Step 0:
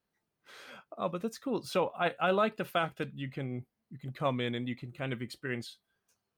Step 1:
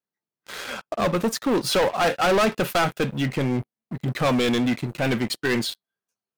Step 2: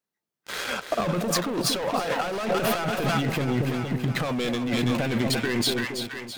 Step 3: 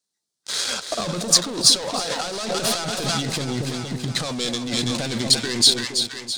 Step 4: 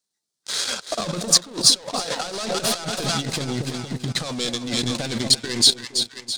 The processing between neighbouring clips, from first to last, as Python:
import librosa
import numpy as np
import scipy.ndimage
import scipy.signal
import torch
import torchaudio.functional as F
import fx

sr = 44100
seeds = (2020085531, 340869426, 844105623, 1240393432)

y1 = scipy.signal.sosfilt(scipy.signal.butter(2, 140.0, 'highpass', fs=sr, output='sos'), x)
y1 = fx.leveller(y1, sr, passes=5)
y2 = fx.echo_split(y1, sr, split_hz=760.0, low_ms=231, high_ms=330, feedback_pct=52, wet_db=-8.0)
y2 = fx.over_compress(y2, sr, threshold_db=-25.0, ratio=-1.0)
y3 = fx.band_shelf(y2, sr, hz=5900.0, db=14.5, octaves=1.7)
y3 = F.gain(torch.from_numpy(y3), -1.5).numpy()
y4 = fx.transient(y3, sr, attack_db=0, sustain_db=-12)